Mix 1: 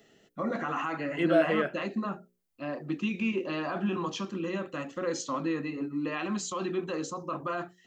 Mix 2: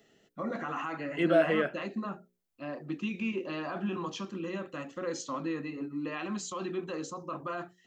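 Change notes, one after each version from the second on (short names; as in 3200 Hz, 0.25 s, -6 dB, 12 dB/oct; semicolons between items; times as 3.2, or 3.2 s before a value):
first voice -3.5 dB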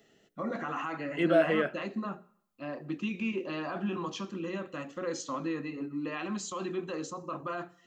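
reverb: on, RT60 0.65 s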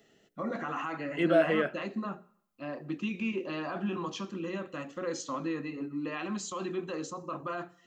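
none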